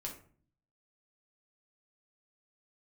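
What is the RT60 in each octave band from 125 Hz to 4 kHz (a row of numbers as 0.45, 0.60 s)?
0.85, 0.75, 0.50, 0.45, 0.40, 0.25 s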